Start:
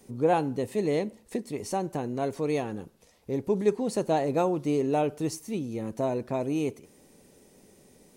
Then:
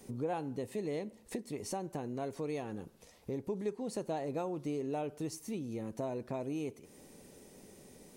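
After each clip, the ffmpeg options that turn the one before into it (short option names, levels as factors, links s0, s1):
-af "acompressor=threshold=0.00891:ratio=2.5,volume=1.12"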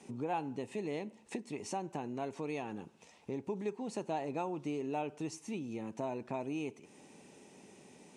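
-af "highpass=140,equalizer=f=510:t=q:w=4:g=-5,equalizer=f=880:t=q:w=4:g=6,equalizer=f=2600:t=q:w=4:g=7,equalizer=f=4600:t=q:w=4:g=-4,lowpass=f=8400:w=0.5412,lowpass=f=8400:w=1.3066"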